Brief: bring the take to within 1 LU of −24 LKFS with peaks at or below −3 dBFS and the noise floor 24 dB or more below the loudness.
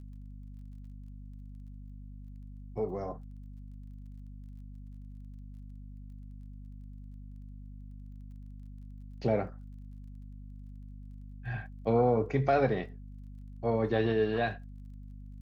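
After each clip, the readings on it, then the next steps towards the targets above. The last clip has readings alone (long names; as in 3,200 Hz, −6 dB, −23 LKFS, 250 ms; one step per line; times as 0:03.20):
crackle rate 17 per second; mains hum 50 Hz; hum harmonics up to 250 Hz; level of the hum −43 dBFS; integrated loudness −31.0 LKFS; sample peak −14.5 dBFS; target loudness −24.0 LKFS
→ click removal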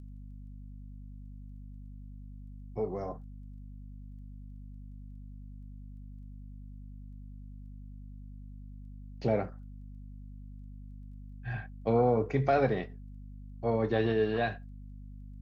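crackle rate 0.065 per second; mains hum 50 Hz; hum harmonics up to 250 Hz; level of the hum −43 dBFS
→ mains-hum notches 50/100/150/200/250 Hz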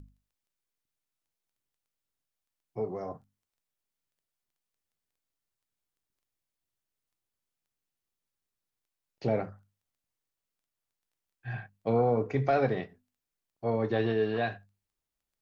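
mains hum none found; integrated loudness −30.5 LKFS; sample peak −15.0 dBFS; target loudness −24.0 LKFS
→ level +6.5 dB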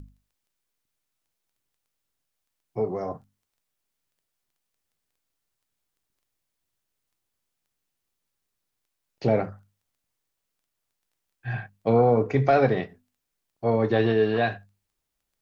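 integrated loudness −24.0 LKFS; sample peak −8.5 dBFS; background noise floor −82 dBFS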